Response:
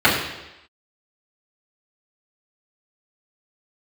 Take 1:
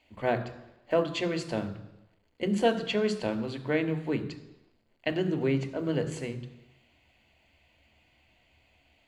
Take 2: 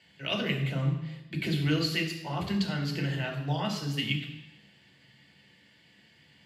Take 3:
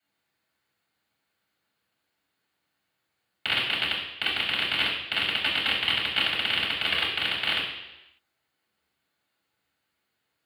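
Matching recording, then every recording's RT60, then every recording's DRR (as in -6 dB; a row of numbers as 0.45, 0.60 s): 3; 0.95, 0.95, 0.95 s; 7.0, -1.0, -10.0 dB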